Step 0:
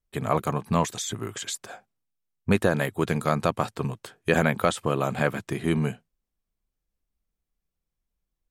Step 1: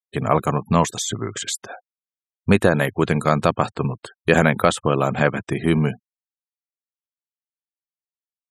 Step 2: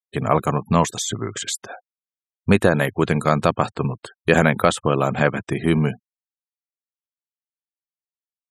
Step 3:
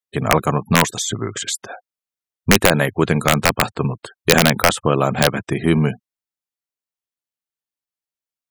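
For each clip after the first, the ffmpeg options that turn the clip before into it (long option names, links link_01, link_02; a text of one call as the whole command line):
ffmpeg -i in.wav -af "afftfilt=real='re*gte(hypot(re,im),0.00891)':imag='im*gte(hypot(re,im),0.00891)':win_size=1024:overlap=0.75,volume=6dB" out.wav
ffmpeg -i in.wav -af anull out.wav
ffmpeg -i in.wav -af "aeval=exprs='(mod(1.5*val(0)+1,2)-1)/1.5':channel_layout=same,volume=2.5dB" out.wav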